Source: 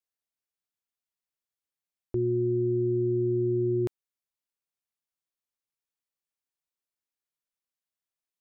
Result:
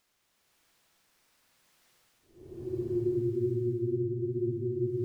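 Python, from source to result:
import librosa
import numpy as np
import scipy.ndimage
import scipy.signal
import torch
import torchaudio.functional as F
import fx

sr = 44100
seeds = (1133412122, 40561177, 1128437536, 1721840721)

p1 = fx.stretch_vocoder(x, sr, factor=0.6)
p2 = fx.dmg_crackle(p1, sr, seeds[0], per_s=62.0, level_db=-39.0)
p3 = p2 + fx.echo_single(p2, sr, ms=395, db=-14.5, dry=0)
p4 = fx.paulstretch(p3, sr, seeds[1], factor=14.0, window_s=0.1, from_s=1.08)
y = p4 * librosa.db_to_amplitude(-4.0)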